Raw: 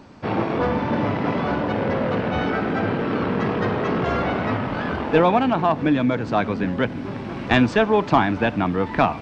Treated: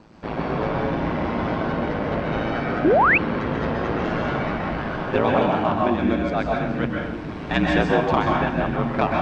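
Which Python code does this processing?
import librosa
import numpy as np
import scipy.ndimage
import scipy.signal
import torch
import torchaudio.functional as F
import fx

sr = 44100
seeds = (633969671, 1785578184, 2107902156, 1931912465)

y = x * np.sin(2.0 * np.pi * 55.0 * np.arange(len(x)) / sr)
y = fx.rev_plate(y, sr, seeds[0], rt60_s=0.82, hf_ratio=0.8, predelay_ms=115, drr_db=-1.0)
y = fx.spec_paint(y, sr, seeds[1], shape='rise', start_s=2.84, length_s=0.34, low_hz=270.0, high_hz=2800.0, level_db=-14.0)
y = y * 10.0 ** (-2.0 / 20.0)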